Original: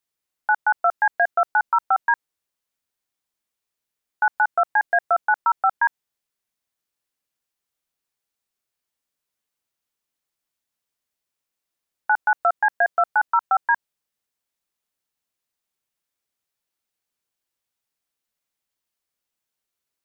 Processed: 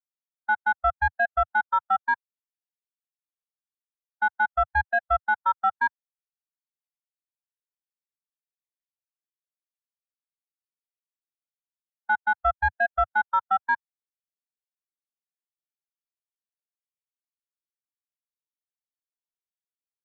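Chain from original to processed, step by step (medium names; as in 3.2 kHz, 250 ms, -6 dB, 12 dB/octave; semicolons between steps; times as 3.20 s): overdrive pedal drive 15 dB, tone 1.4 kHz, clips at -10 dBFS; resonant low shelf 120 Hz +9 dB, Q 1.5; spectral contrast expander 1.5:1; trim -3 dB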